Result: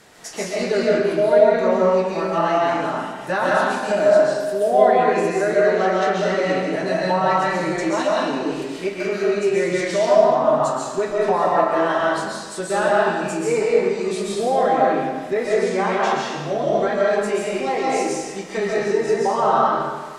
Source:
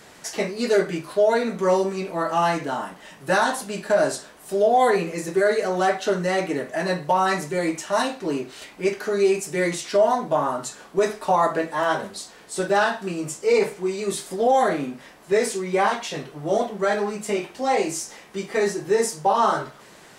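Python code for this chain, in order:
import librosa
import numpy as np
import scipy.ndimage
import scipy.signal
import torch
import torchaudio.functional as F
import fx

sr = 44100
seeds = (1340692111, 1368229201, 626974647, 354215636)

y = fx.env_lowpass_down(x, sr, base_hz=2800.0, full_db=-15.0)
y = fx.rev_freeverb(y, sr, rt60_s=1.4, hf_ratio=0.9, predelay_ms=95, drr_db=-4.5)
y = F.gain(torch.from_numpy(y), -2.5).numpy()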